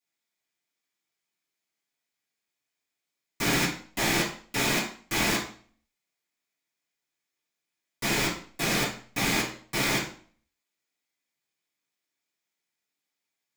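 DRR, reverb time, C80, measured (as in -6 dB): -10.5 dB, 0.45 s, 12.0 dB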